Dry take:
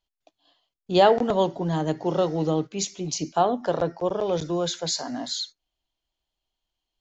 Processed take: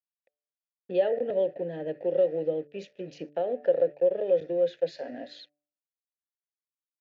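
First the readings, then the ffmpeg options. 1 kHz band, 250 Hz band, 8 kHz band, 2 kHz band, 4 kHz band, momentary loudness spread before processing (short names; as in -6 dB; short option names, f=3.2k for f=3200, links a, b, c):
-17.5 dB, -11.0 dB, n/a, under -10 dB, under -15 dB, 11 LU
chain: -filter_complex "[0:a]aeval=exprs='sgn(val(0))*max(abs(val(0))-0.00562,0)':c=same,lowpass=3.9k,lowshelf=f=370:g=10.5,acompressor=threshold=-24dB:ratio=2.5,asplit=3[a][b][c];[a]bandpass=f=530:t=q:w=8,volume=0dB[d];[b]bandpass=f=1.84k:t=q:w=8,volume=-6dB[e];[c]bandpass=f=2.48k:t=q:w=8,volume=-9dB[f];[d][e][f]amix=inputs=3:normalize=0,bandreject=f=147.2:t=h:w=4,bandreject=f=294.4:t=h:w=4,bandreject=f=441.6:t=h:w=4,bandreject=f=588.8:t=h:w=4,bandreject=f=736:t=h:w=4,volume=7.5dB"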